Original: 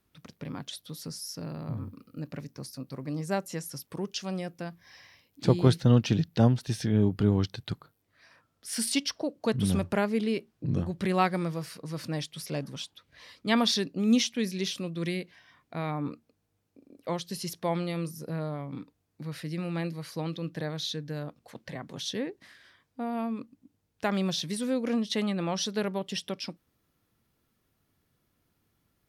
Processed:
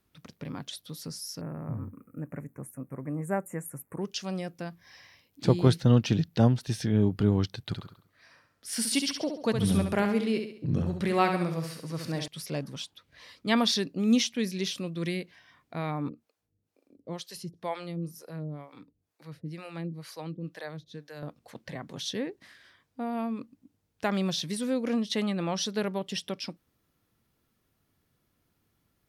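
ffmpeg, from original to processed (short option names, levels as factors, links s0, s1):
-filter_complex "[0:a]asettb=1/sr,asplit=3[s0][s1][s2];[s0]atrim=end=1.414[s3];[s1]atrim=start=1.41:end=4.02,asetpts=PTS-STARTPTS,afade=t=in:d=0.004:c=qsin,afade=t=out:st=2.606:d=0.004:c=qsin,asuperstop=centerf=4200:order=8:qfactor=0.77[s4];[s2]atrim=start=4.016[s5];[s3][s4]acrossfade=d=0.004:c1=hsin:c2=qsin[s6];[s6][s5]acrossfade=d=0.004:c1=qsin:c2=hsin,asettb=1/sr,asplit=3[s7][s8][s9];[s7]atrim=end=7.674[s10];[s8]atrim=start=7.67:end=12.28,asetpts=PTS-STARTPTS,afade=t=in:d=0.004:c=qsin,afade=t=out:st=4.606:d=0.004:c=qsin,aecho=1:1:68|136|204|272|340:0.473|0.199|0.0835|0.0351|0.0147,atrim=end_sample=203301[s11];[s9]atrim=start=12.276[s12];[s10][s11]acrossfade=d=0.004:c1=hsin:c2=qsin[s13];[s13][s12]acrossfade=d=0.004:c1=qsin:c2=hsin,asettb=1/sr,asplit=3[s14][s15][s16];[s14]atrim=end=16.094[s17];[s15]atrim=start=16.09:end=21.23,asetpts=PTS-STARTPTS,afade=t=in:d=0.004:c=qsin,afade=t=out:st=5.136:d=0.004:c=qsin,acrossover=split=460[s18][s19];[s18]aeval=exprs='val(0)*(1-1/2+1/2*cos(2*PI*2.1*n/s))':c=same[s20];[s19]aeval=exprs='val(0)*(1-1/2-1/2*cos(2*PI*2.1*n/s))':c=same[s21];[s20][s21]amix=inputs=2:normalize=0[s22];[s16]atrim=start=21.226[s23];[s17][s22]acrossfade=d=0.004:c1=hsin:c2=qsin[s24];[s24][s23]acrossfade=d=0.004:c1=qsin:c2=hsin"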